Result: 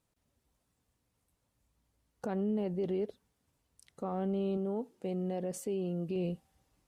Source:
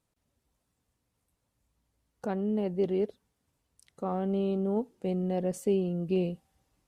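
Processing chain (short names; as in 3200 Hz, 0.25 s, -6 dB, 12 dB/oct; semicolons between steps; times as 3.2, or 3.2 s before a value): limiter -25.5 dBFS, peak gain reduction 8.5 dB; 4.57–6.16 low shelf 110 Hz -10.5 dB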